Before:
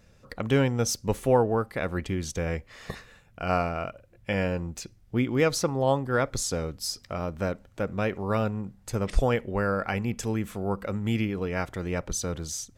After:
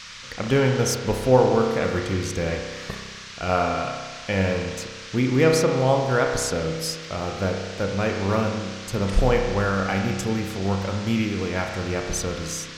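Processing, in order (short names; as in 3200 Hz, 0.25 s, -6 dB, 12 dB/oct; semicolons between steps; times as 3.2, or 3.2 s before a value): band noise 1100–6100 Hz -44 dBFS; spring tank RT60 1.5 s, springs 31 ms, chirp 80 ms, DRR 2 dB; gain +2.5 dB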